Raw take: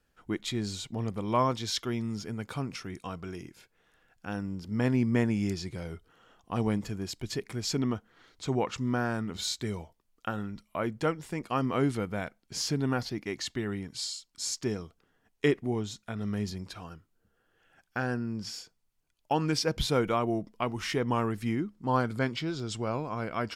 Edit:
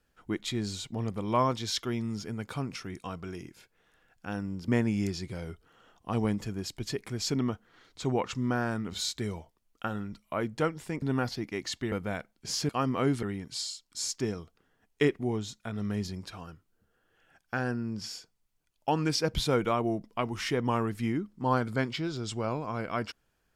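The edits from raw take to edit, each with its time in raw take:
4.68–5.11 s: delete
11.45–11.99 s: swap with 12.76–13.66 s

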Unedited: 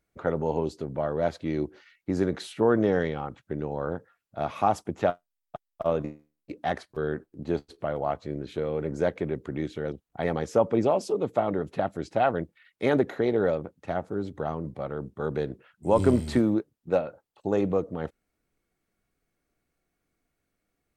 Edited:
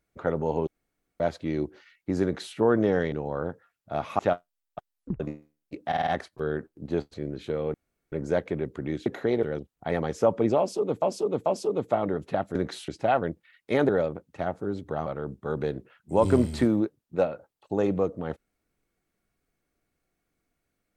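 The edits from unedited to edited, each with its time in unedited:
0.67–1.20 s: room tone
2.23–2.56 s: copy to 12.00 s
3.12–3.58 s: delete
4.65–4.96 s: delete
5.68 s: tape stop 0.29 s
6.64 s: stutter 0.05 s, 5 plays
7.71–8.22 s: delete
8.82 s: insert room tone 0.38 s
10.91–11.35 s: loop, 3 plays
13.01–13.38 s: move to 9.76 s
14.55–14.80 s: delete

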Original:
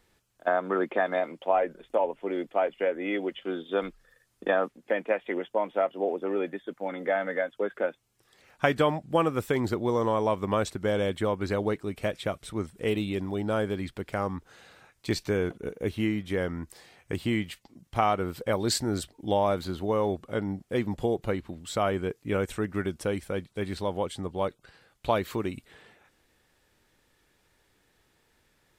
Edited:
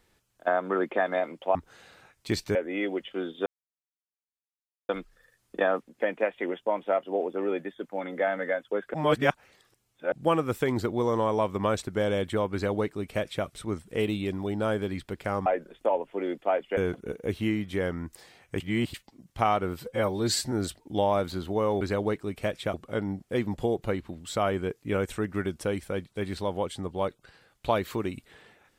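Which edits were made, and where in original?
1.55–2.86 s: swap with 14.34–15.34 s
3.77 s: insert silence 1.43 s
7.82–9.00 s: reverse
11.41–12.34 s: copy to 20.14 s
17.17–17.51 s: reverse
18.37–18.85 s: stretch 1.5×

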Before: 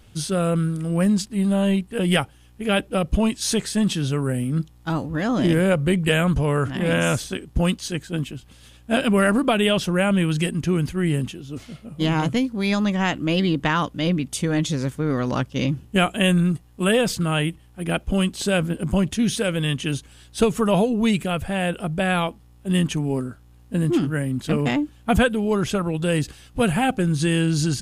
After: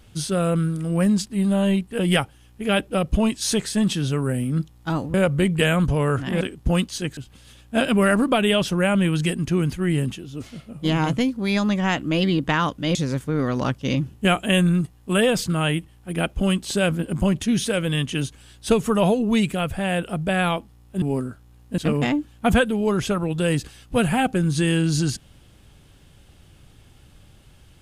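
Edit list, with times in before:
5.14–5.62 s: delete
6.89–7.31 s: delete
8.07–8.33 s: delete
14.11–14.66 s: delete
22.73–23.02 s: delete
23.78–24.42 s: delete

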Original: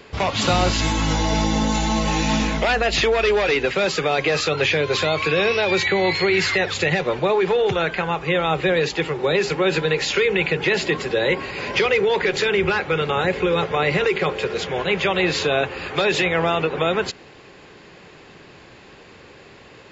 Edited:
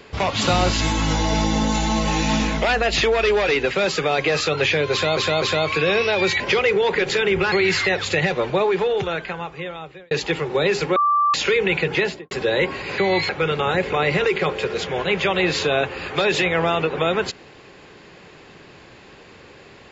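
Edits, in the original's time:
4.92–5.17 s: loop, 3 plays
5.90–6.21 s: swap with 11.67–12.79 s
7.27–8.80 s: fade out
9.65–10.03 s: bleep 1.17 kHz -14.5 dBFS
10.66–11.00 s: studio fade out
13.43–13.73 s: delete

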